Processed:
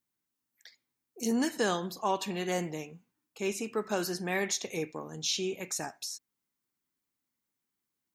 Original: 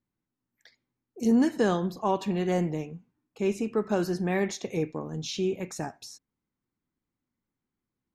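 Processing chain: tilt +3 dB/oct; gain -1.5 dB

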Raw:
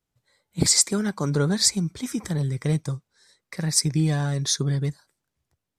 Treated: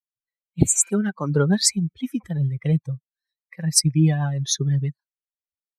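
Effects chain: per-bin expansion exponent 2; wow and flutter 18 cents; spectral repair 0.65–0.86, 920–5900 Hz both; rotary speaker horn 6.3 Hz; gain +7.5 dB

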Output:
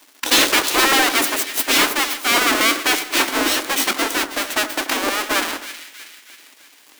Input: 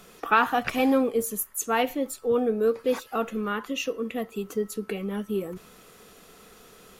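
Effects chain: half-waves squared off; spectral gate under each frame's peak -15 dB weak; sample leveller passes 3; resonant low shelf 190 Hz -12.5 dB, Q 3; split-band echo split 1700 Hz, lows 86 ms, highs 0.319 s, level -11.5 dB; gain +2.5 dB

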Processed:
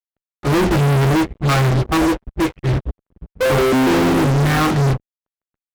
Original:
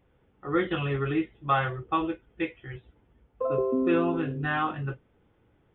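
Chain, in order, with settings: tilt -4.5 dB/oct; fuzz box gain 41 dB, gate -41 dBFS; upward expander 2.5:1, over -30 dBFS

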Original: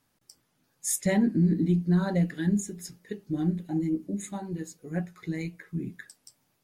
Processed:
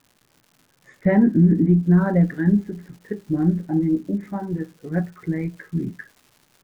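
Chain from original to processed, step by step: Chebyshev low-pass 1700 Hz, order 3; crackle 200/s -51 dBFS, from 1.83 s 450/s; gain +8 dB

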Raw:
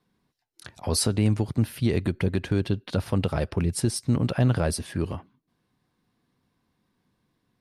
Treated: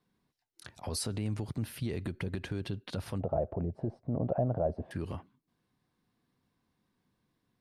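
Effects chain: limiter -20.5 dBFS, peak gain reduction 9 dB; 3.2–4.91 synth low-pass 660 Hz, resonance Q 4.9; gain -5 dB

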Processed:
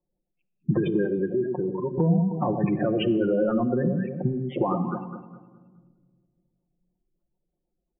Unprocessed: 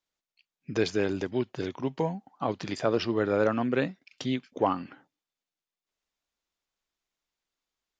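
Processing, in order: 3.07–3.62 CVSD 32 kbps; steep low-pass 3400 Hz 96 dB/oct; low-pass opened by the level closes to 590 Hz, open at -25 dBFS; in parallel at -7.5 dB: one-sided clip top -27.5 dBFS; on the sum: limiter -18.5 dBFS, peak gain reduction 9.5 dB; on a send: echo with dull and thin repeats by turns 0.104 s, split 930 Hz, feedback 56%, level -5 dB; on the sum: spectral gate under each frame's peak -15 dB strong; 1.05–1.98 tilt +4 dB/oct; compressor 3:1, threshold -31 dBFS, peak gain reduction 7.5 dB; low shelf 320 Hz +6 dB; comb 5.6 ms, depth 80%; shoebox room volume 2200 m³, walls mixed, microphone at 0.41 m; gain +5.5 dB

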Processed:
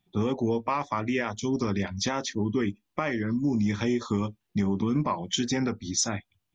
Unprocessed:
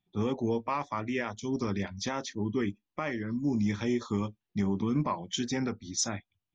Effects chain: compressor 2:1, threshold -34 dBFS, peak gain reduction 6 dB; gain +8 dB

